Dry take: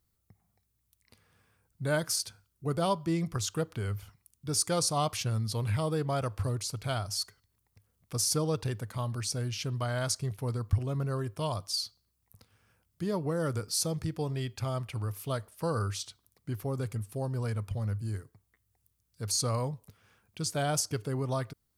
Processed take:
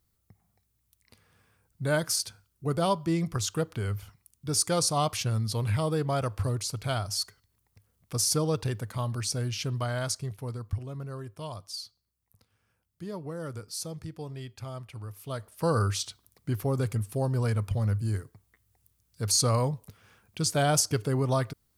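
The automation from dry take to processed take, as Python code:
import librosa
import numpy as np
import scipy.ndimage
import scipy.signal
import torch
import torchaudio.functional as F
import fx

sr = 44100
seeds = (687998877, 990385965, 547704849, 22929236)

y = fx.gain(x, sr, db=fx.line((9.72, 2.5), (10.92, -6.0), (15.17, -6.0), (15.69, 5.5)))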